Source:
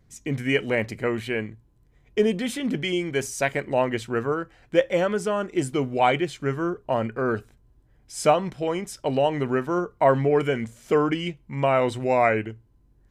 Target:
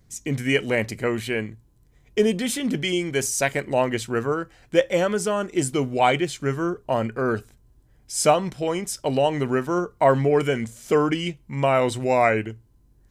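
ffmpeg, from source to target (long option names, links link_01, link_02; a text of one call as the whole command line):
ffmpeg -i in.wav -af "bass=frequency=250:gain=1,treble=frequency=4000:gain=8,volume=1dB" out.wav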